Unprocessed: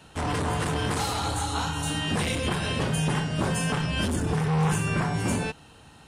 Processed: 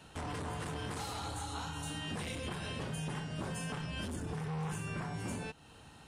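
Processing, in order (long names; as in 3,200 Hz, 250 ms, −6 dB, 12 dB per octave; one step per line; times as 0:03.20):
downward compressor 2 to 1, threshold −39 dBFS, peak gain reduction 10.5 dB
level −4.5 dB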